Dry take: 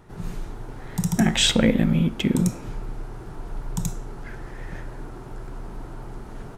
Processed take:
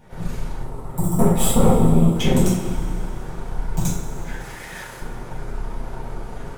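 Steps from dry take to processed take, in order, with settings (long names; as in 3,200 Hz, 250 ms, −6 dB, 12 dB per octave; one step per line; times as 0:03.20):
half-wave rectification
0:00.61–0:02.15: gain on a spectral selection 1,400–7,300 Hz −15 dB
0:04.40–0:05.00: spectral tilt +3.5 dB per octave
coupled-rooms reverb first 0.44 s, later 2.8 s, from −16 dB, DRR −9.5 dB
level −1 dB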